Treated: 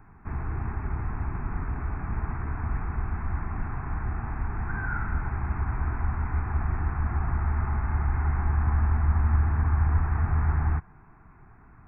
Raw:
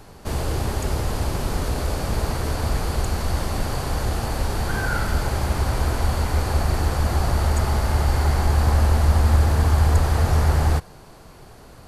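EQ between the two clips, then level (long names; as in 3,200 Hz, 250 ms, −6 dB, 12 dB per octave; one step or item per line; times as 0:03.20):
linear-phase brick-wall low-pass 2,700 Hz
phaser with its sweep stopped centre 1,300 Hz, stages 4
−5.5 dB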